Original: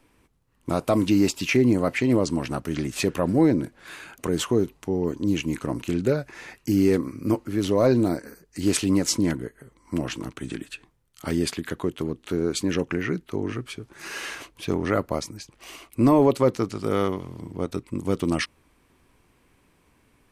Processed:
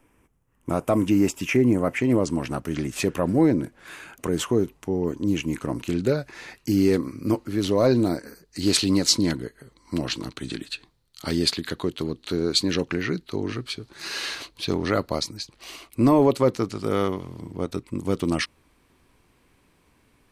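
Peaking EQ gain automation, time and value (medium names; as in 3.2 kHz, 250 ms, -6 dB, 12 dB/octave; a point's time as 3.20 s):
peaking EQ 4.2 kHz 0.53 oct
1.89 s -13.5 dB
2.43 s -3 dB
5.55 s -3 dB
6.05 s +5.5 dB
8.22 s +5.5 dB
8.82 s +14 dB
15.31 s +14 dB
16.09 s +3 dB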